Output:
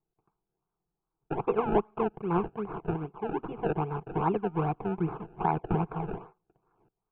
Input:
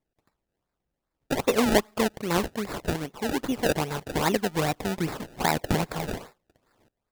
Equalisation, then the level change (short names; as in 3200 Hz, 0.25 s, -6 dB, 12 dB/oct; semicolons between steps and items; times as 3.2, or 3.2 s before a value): steep low-pass 2500 Hz 48 dB/oct; air absorption 64 m; fixed phaser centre 380 Hz, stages 8; 0.0 dB